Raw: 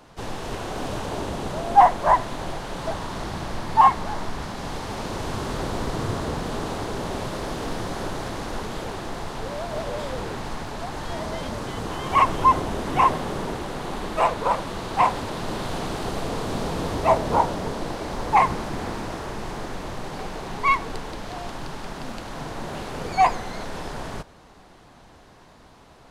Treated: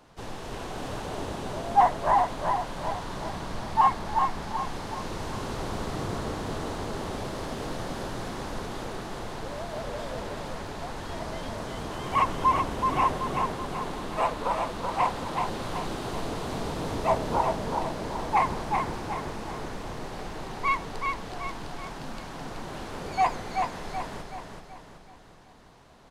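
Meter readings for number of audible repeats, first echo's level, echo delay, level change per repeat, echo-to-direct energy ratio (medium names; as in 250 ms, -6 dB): 5, -4.5 dB, 378 ms, -7.0 dB, -3.5 dB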